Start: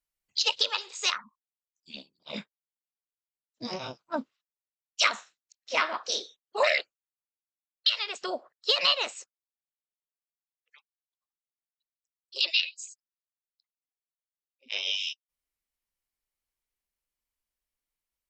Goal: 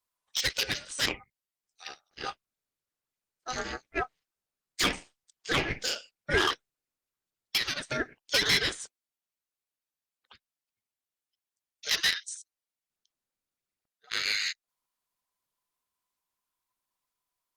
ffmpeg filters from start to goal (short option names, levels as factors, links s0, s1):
-af "aeval=exprs='val(0)*sin(2*PI*970*n/s)':c=same,asoftclip=type=tanh:threshold=0.0794,tremolo=f=260:d=0.462,asetrate=45938,aresample=44100,volume=2.37" -ar 48000 -c:a libopus -b:a 32k